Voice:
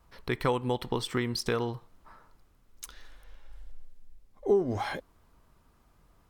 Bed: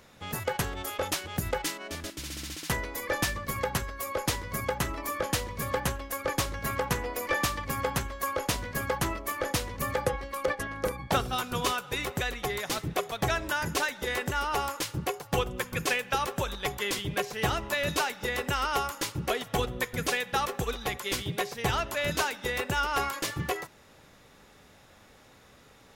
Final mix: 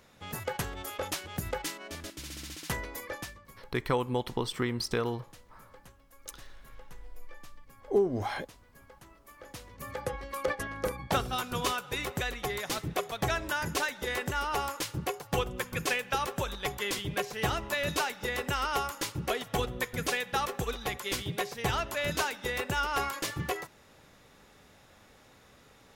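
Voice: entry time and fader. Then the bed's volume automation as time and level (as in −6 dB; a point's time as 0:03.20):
3.45 s, −1.0 dB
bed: 0:02.95 −4 dB
0:03.66 −25.5 dB
0:09.06 −25.5 dB
0:10.31 −2 dB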